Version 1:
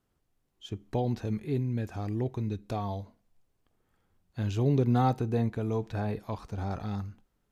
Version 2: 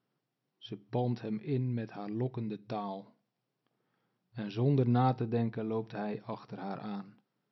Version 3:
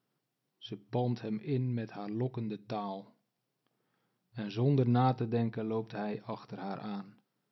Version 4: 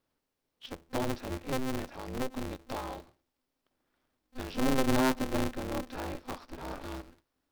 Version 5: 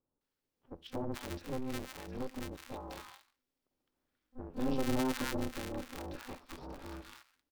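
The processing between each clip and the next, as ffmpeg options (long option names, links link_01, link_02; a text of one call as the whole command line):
ffmpeg -i in.wav -af "afftfilt=real='re*between(b*sr/4096,110,5800)':imag='im*between(b*sr/4096,110,5800)':win_size=4096:overlap=0.75,volume=-2.5dB" out.wav
ffmpeg -i in.wav -af "highshelf=frequency=4800:gain=5.5" out.wav
ffmpeg -i in.wav -af "asubboost=boost=3.5:cutoff=110,aeval=exprs='val(0)*sgn(sin(2*PI*130*n/s))':channel_layout=same" out.wav
ffmpeg -i in.wav -filter_complex "[0:a]bandreject=frequency=660:width=12,acrossover=split=1100[link_01][link_02];[link_02]adelay=210[link_03];[link_01][link_03]amix=inputs=2:normalize=0,volume=-5dB" out.wav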